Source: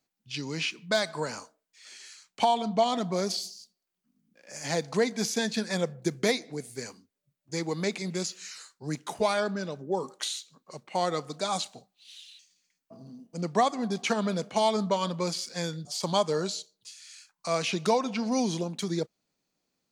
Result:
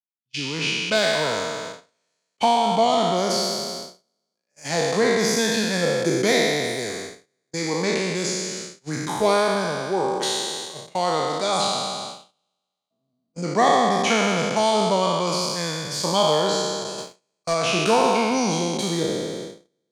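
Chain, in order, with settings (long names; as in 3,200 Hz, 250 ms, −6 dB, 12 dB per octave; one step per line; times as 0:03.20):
peak hold with a decay on every bin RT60 2.34 s
noise gate −35 dBFS, range −34 dB
0:16.98–0:17.54: leveller curve on the samples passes 1
level +2.5 dB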